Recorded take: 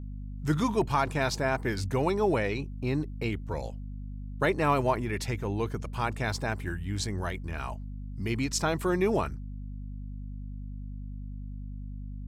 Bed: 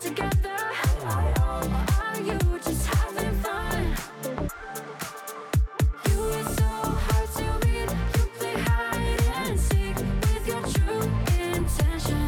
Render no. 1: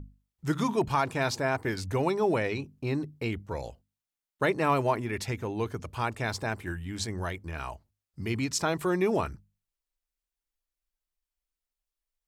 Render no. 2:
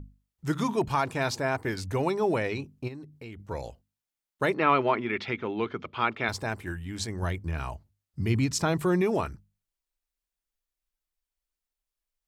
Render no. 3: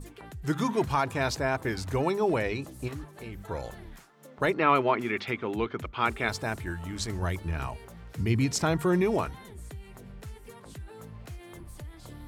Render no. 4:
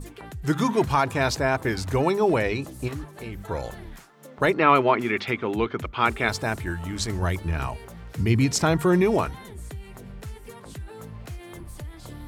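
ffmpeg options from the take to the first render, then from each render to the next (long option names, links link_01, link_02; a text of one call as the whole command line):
ffmpeg -i in.wav -af "bandreject=frequency=50:width_type=h:width=6,bandreject=frequency=100:width_type=h:width=6,bandreject=frequency=150:width_type=h:width=6,bandreject=frequency=200:width_type=h:width=6,bandreject=frequency=250:width_type=h:width=6" out.wav
ffmpeg -i in.wav -filter_complex "[0:a]asplit=3[link_01][link_02][link_03];[link_01]afade=type=out:start_time=2.87:duration=0.02[link_04];[link_02]acompressor=threshold=-48dB:ratio=2:attack=3.2:release=140:knee=1:detection=peak,afade=type=in:start_time=2.87:duration=0.02,afade=type=out:start_time=3.38:duration=0.02[link_05];[link_03]afade=type=in:start_time=3.38:duration=0.02[link_06];[link_04][link_05][link_06]amix=inputs=3:normalize=0,asettb=1/sr,asplit=3[link_07][link_08][link_09];[link_07]atrim=end=4.544[link_10];[link_08]atrim=start=4.54:end=6.29,asetpts=PTS-STARTPTS,afade=type=in:duration=0.004:curve=qsin,afade=type=out:start_time=1.746:duration=0.004:curve=qsin,highpass=170,equalizer=frequency=220:width_type=q:width=4:gain=4,equalizer=frequency=370:width_type=q:width=4:gain=4,equalizer=frequency=1300:width_type=q:width=4:gain=8,equalizer=frequency=2200:width_type=q:width=4:gain=7,equalizer=frequency=3300:width_type=q:width=4:gain=8,lowpass=frequency=4100:width=0.5412,lowpass=frequency=4100:width=1.3066[link_11];[link_09]atrim=start=6.286[link_12];[link_10][link_11]acrossfade=duration=0.004:curve1=hsin:curve2=qsin[link_13];[link_13][link_12]acrossfade=duration=0.004:curve1=qsin:curve2=hsin,asettb=1/sr,asplit=3[link_14][link_15][link_16];[link_14]atrim=end=7.224[link_17];[link_15]atrim=start=7.22:end=9.02,asetpts=PTS-STARTPTS,afade=type=in:duration=0.004:curve=qsin,afade=type=out:start_time=1.796:duration=0.004:curve=qsin,equalizer=frequency=110:width=0.54:gain=8[link_18];[link_16]atrim=start=9.016[link_19];[link_17][link_18]acrossfade=duration=0.004:curve1=hsin:curve2=qsin[link_20];[link_20][link_19]acrossfade=duration=0.004:curve1=qsin:curve2=hsin" out.wav
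ffmpeg -i in.wav -i bed.wav -filter_complex "[1:a]volume=-19.5dB[link_01];[0:a][link_01]amix=inputs=2:normalize=0" out.wav
ffmpeg -i in.wav -af "volume=5dB" out.wav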